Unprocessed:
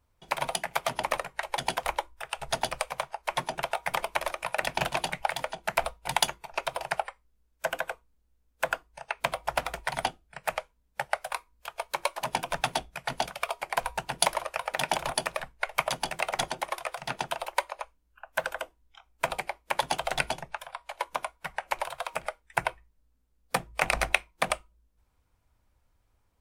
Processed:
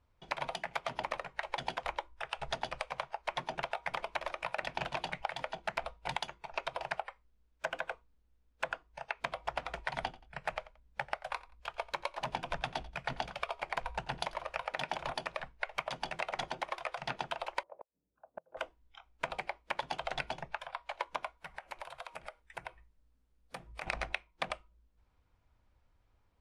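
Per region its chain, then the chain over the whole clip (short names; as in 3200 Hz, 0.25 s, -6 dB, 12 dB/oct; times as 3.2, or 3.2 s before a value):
10–14.65 low shelf 120 Hz +8.5 dB + feedback echo 88 ms, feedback 21%, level -21.5 dB
17.63–18.57 Chebyshev band-pass 130–520 Hz + flipped gate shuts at -31 dBFS, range -32 dB
21.37–23.87 bell 11000 Hz +11 dB 0.71 oct + compressor 2.5:1, threshold -44 dBFS
whole clip: compressor 6:1, threshold -31 dBFS; LPF 4500 Hz 12 dB/oct; gain -1 dB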